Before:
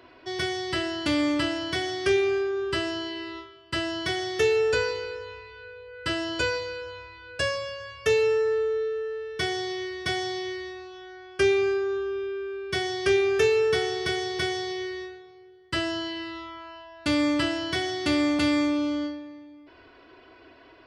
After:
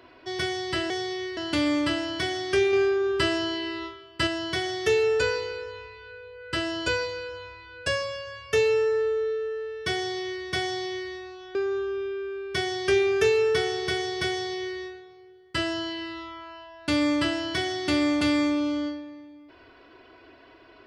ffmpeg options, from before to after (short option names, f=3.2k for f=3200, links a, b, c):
-filter_complex "[0:a]asplit=6[a][b][c][d][e][f];[a]atrim=end=0.902[g];[b]atrim=start=9.488:end=9.962[h];[c]atrim=start=0.898:end=2.262[i];[d]atrim=start=2.258:end=3.802,asetpts=PTS-STARTPTS,volume=3.5dB[j];[e]atrim=start=3.798:end=11.082[k];[f]atrim=start=11.728[l];[g][h]acrossfade=d=0.004:c1=hsin:c2=hsin[m];[m][i]acrossfade=d=0.004:c1=hsin:c2=hsin[n];[n][j]acrossfade=d=0.004:c1=hsin:c2=hsin[o];[o][k]acrossfade=d=0.004:c1=hsin:c2=hsin[p];[p][l]acrossfade=d=0.004:c1=hsin:c2=hsin"